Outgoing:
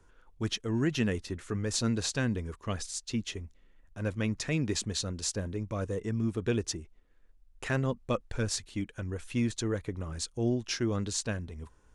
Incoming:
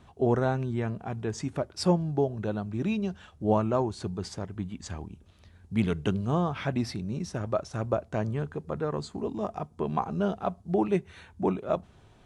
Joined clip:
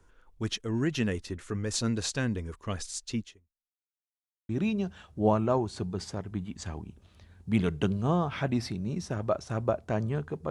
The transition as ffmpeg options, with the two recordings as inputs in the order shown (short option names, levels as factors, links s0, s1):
-filter_complex "[0:a]apad=whole_dur=10.5,atrim=end=10.5,asplit=2[s0][s1];[s0]atrim=end=4.03,asetpts=PTS-STARTPTS,afade=t=out:st=3.19:d=0.84:c=exp[s2];[s1]atrim=start=4.03:end=4.49,asetpts=PTS-STARTPTS,volume=0[s3];[1:a]atrim=start=2.73:end=8.74,asetpts=PTS-STARTPTS,afade=t=in:d=0.004:c=hsin[s4];[s2][s3][s4]concat=n=3:v=0:a=1"